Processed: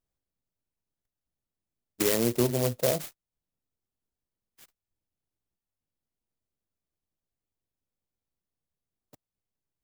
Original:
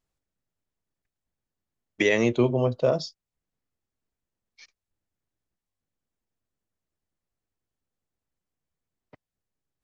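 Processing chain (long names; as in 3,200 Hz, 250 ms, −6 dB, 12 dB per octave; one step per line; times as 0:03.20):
converter with an unsteady clock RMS 0.14 ms
level −3.5 dB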